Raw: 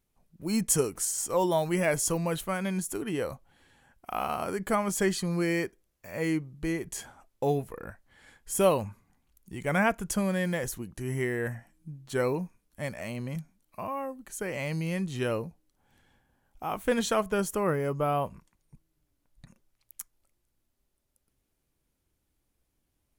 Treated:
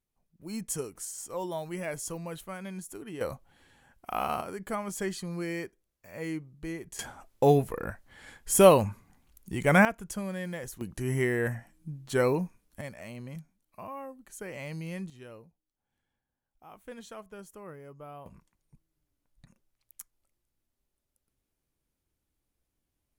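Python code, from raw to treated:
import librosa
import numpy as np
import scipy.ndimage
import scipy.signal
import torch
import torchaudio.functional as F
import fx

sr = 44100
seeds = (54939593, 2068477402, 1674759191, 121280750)

y = fx.gain(x, sr, db=fx.steps((0.0, -9.0), (3.21, 0.5), (4.41, -6.5), (6.99, 6.0), (9.85, -7.0), (10.81, 2.5), (12.81, -6.5), (15.1, -18.0), (18.26, -5.0)))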